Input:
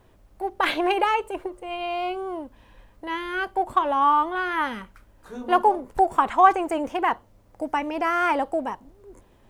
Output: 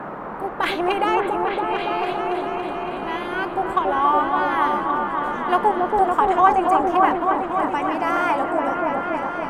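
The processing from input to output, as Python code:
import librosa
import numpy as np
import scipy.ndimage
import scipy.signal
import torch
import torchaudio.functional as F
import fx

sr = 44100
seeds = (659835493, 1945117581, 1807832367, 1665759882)

y = fx.echo_opening(x, sr, ms=281, hz=750, octaves=1, feedback_pct=70, wet_db=0)
y = fx.dmg_noise_band(y, sr, seeds[0], low_hz=150.0, high_hz=1300.0, level_db=-32.0)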